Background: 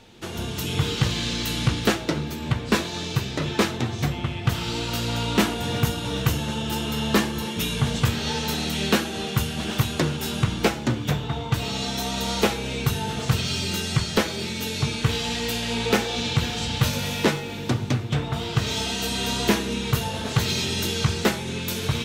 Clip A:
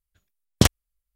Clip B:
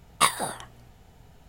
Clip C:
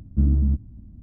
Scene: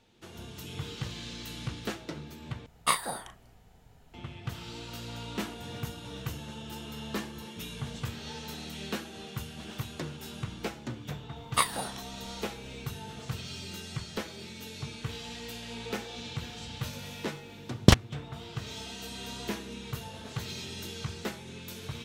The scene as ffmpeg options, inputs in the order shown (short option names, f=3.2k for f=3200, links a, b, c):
-filter_complex "[2:a]asplit=2[a][b];[0:a]volume=-14.5dB[c];[a]asplit=2[d][e];[e]adelay=37,volume=-9dB[f];[d][f]amix=inputs=2:normalize=0[g];[1:a]acrossover=split=5400[h][i];[i]acompressor=threshold=-30dB:ratio=4:attack=1:release=60[j];[h][j]amix=inputs=2:normalize=0[k];[c]asplit=2[l][m];[l]atrim=end=2.664[n];[g]atrim=end=1.48,asetpts=PTS-STARTPTS,volume=-5.5dB[o];[m]atrim=start=4.136[p];[b]atrim=end=1.48,asetpts=PTS-STARTPTS,volume=-5dB,afade=t=in:d=0.004:c=hsin,afade=t=out:st=1.476:d=0.004:c=hsin,adelay=11360[q];[k]atrim=end=1.15,asetpts=PTS-STARTPTS,afade=t=in:d=0.004:c=hsin,afade=t=out:st=1.146:d=0.004:c=hsin,adelay=17270[r];[n][o]acrossfade=d=0.004:c1=hsin:c2=hsin[s];[s][p]acrossfade=d=0.004:c1=hsin:c2=hsin[t];[t][q][r]amix=inputs=3:normalize=0"